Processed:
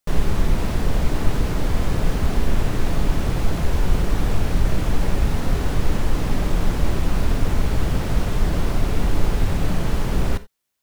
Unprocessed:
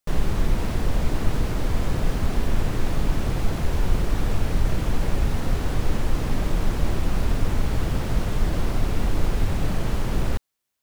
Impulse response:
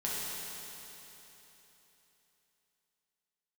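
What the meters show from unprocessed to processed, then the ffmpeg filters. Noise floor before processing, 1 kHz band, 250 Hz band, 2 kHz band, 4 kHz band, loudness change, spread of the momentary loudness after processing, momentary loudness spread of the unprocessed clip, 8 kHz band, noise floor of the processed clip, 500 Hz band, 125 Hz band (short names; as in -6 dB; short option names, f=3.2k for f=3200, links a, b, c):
-30 dBFS, +3.0 dB, +3.0 dB, +3.0 dB, +3.0 dB, +2.5 dB, 1 LU, 1 LU, +3.0 dB, -26 dBFS, +3.0 dB, +2.5 dB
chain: -filter_complex "[0:a]asplit=2[a][b];[1:a]atrim=start_sample=2205,afade=t=out:st=0.14:d=0.01,atrim=end_sample=6615[c];[b][c]afir=irnorm=-1:irlink=0,volume=-11.5dB[d];[a][d]amix=inputs=2:normalize=0,volume=1dB"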